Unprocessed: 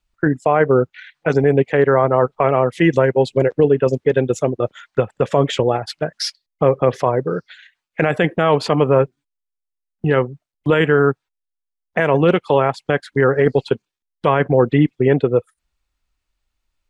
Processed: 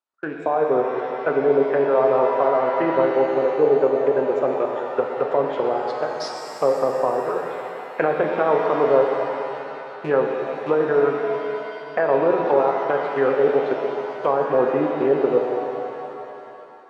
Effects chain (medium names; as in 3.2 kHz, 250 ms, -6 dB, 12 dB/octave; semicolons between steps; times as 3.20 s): rattle on loud lows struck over -22 dBFS, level -20 dBFS; high-pass 410 Hz 12 dB/octave; resonant high shelf 1.7 kHz -7.5 dB, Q 1.5; low-pass that closes with the level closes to 830 Hz, closed at -13.5 dBFS; level rider; pitch-shifted reverb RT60 2.9 s, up +7 st, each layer -8 dB, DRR 1.5 dB; trim -7.5 dB